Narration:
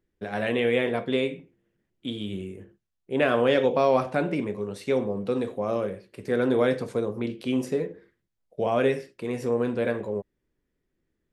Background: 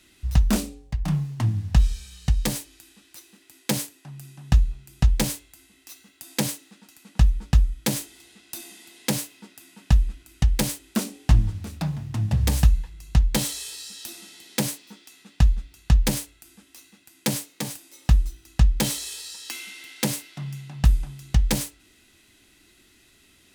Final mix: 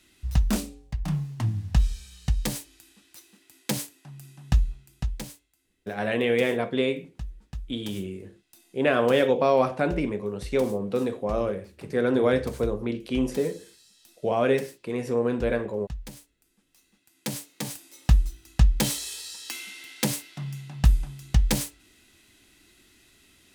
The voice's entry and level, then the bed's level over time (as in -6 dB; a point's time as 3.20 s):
5.65 s, +0.5 dB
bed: 4.69 s -3.5 dB
5.49 s -19 dB
16.42 s -19 dB
17.74 s -1 dB